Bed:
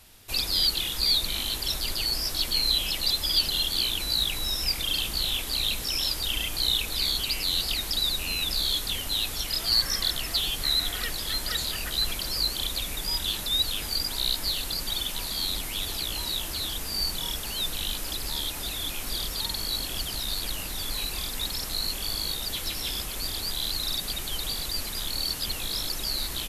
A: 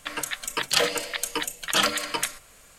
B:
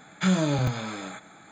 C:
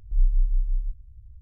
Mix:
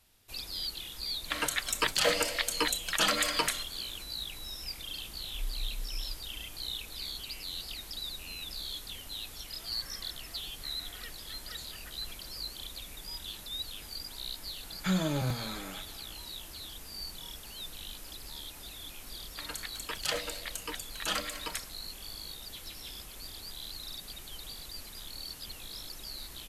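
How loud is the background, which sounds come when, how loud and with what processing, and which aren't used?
bed −13 dB
0:01.25: mix in A −0.5 dB + brickwall limiter −14.5 dBFS
0:05.23: mix in C −14.5 dB + speech leveller
0:14.63: mix in B −6.5 dB
0:19.32: mix in A −11 dB

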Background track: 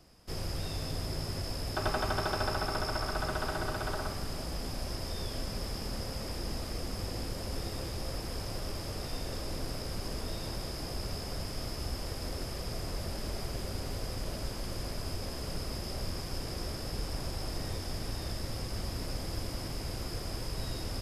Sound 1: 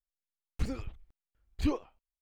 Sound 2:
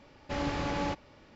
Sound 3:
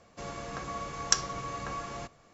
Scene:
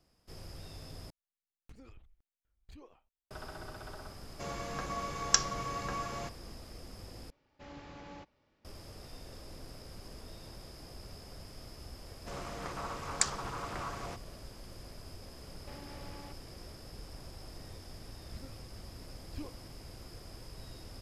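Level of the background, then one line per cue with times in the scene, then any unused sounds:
background track −11.5 dB
0:01.10: overwrite with 1 −8 dB + downward compressor 16 to 1, threshold −40 dBFS
0:04.22: mix in 3 −0.5 dB
0:07.30: overwrite with 2 −17 dB
0:12.09: mix in 3 −3 dB + highs frequency-modulated by the lows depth 0.72 ms
0:15.38: mix in 2 −7.5 dB + downward compressor, threshold −39 dBFS
0:17.73: mix in 1 −15 dB

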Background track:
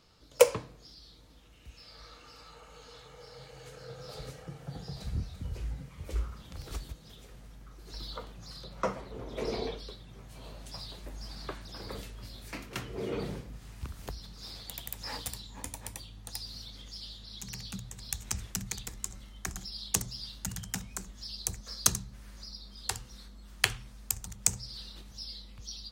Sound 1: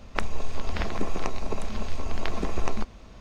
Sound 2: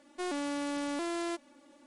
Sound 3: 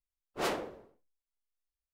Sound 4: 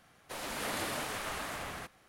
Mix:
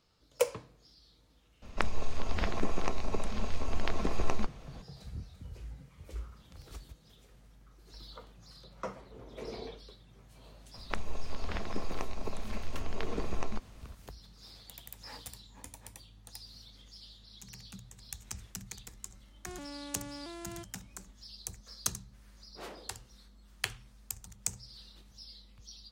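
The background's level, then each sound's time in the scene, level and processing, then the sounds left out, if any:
background track −8 dB
0:01.62: mix in 1 −3 dB
0:10.75: mix in 1 −7.5 dB
0:19.27: mix in 2 −10.5 dB
0:22.19: mix in 3 −13.5 dB
not used: 4

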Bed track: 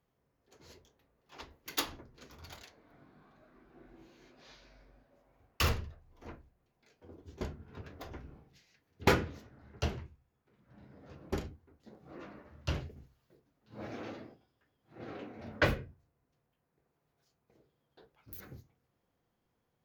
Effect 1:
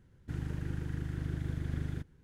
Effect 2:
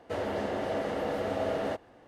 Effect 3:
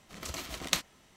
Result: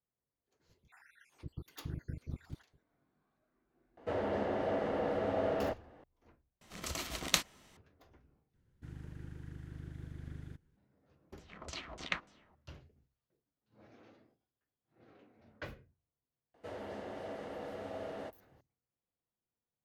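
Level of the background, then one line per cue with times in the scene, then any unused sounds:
bed track −17.5 dB
0:00.60: mix in 1 −5 dB + time-frequency cells dropped at random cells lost 76%
0:03.97: mix in 2 −2 dB + low-pass filter 2,100 Hz 6 dB per octave
0:06.61: overwrite with 3 −0.5 dB
0:08.54: overwrite with 1 −11 dB
0:11.39: mix in 3 −7 dB + auto-filter low-pass saw down 3.4 Hz 600–7,800 Hz
0:16.54: mix in 2 −12 dB

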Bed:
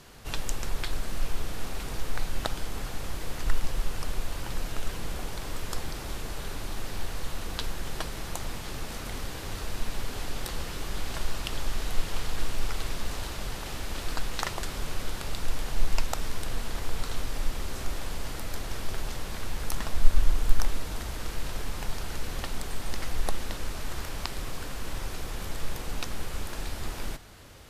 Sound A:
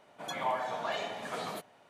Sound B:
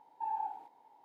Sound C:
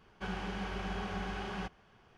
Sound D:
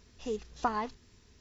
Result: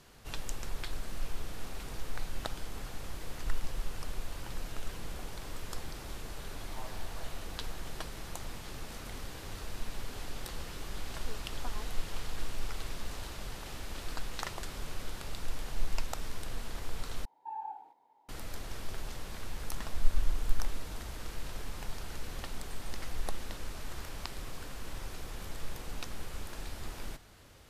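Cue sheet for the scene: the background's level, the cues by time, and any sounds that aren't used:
bed −7 dB
0:06.32: mix in A −17.5 dB
0:11.00: mix in D −16.5 dB
0:17.25: overwrite with B −4.5 dB
not used: C

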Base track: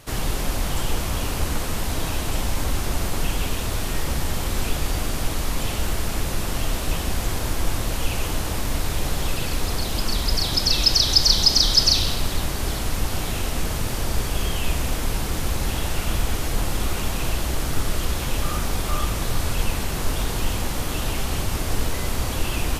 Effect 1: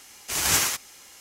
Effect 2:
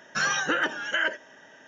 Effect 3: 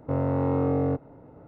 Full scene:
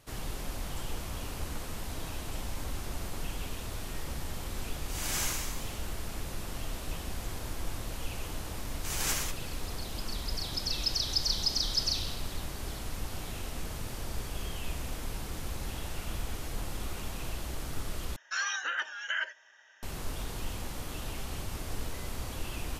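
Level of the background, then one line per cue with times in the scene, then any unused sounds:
base track −13 dB
0:04.60: mix in 1 −16 dB + four-comb reverb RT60 1.2 s, combs from 31 ms, DRR −4 dB
0:08.55: mix in 1 −10.5 dB
0:18.16: overwrite with 2 −5.5 dB + high-pass filter 1,200 Hz
not used: 3

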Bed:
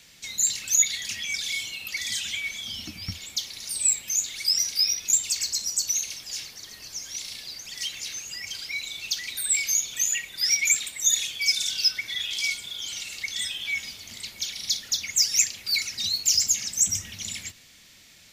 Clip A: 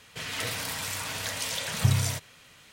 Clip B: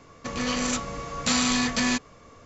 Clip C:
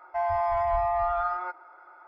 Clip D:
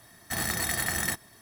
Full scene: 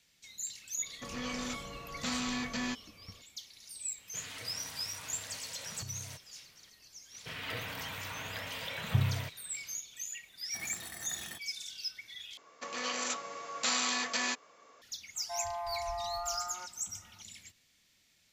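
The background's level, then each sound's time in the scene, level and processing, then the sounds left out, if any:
bed −16.5 dB
0:00.77: mix in B −11 dB + high-frequency loss of the air 54 metres
0:03.98: mix in A −10.5 dB + downward compressor, threshold −31 dBFS
0:07.10: mix in A −5.5 dB, fades 0.05 s + flat-topped bell 7,400 Hz −14 dB
0:10.23: mix in D −16.5 dB + low-shelf EQ 72 Hz −9.5 dB
0:12.37: overwrite with B −6 dB + high-pass filter 500 Hz
0:15.15: mix in C −12 dB

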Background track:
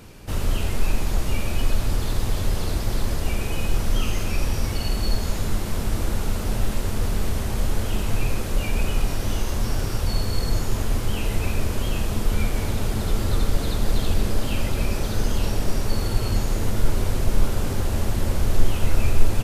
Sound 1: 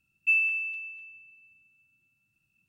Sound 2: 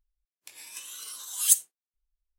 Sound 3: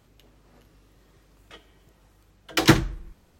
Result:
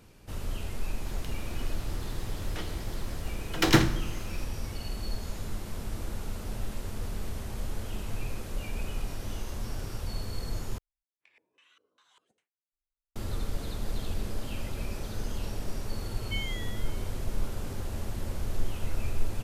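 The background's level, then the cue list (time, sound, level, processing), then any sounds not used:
background track −11.5 dB
0:01.05: mix in 3 −5.5 dB + compressor on every frequency bin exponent 0.6
0:10.78: overwrite with 2 −14.5 dB + auto-filter low-pass square 2.5 Hz 450–2,200 Hz
0:16.04: mix in 1 −11 dB + ring modulator whose carrier an LFO sweeps 580 Hz, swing 25%, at 1.6 Hz

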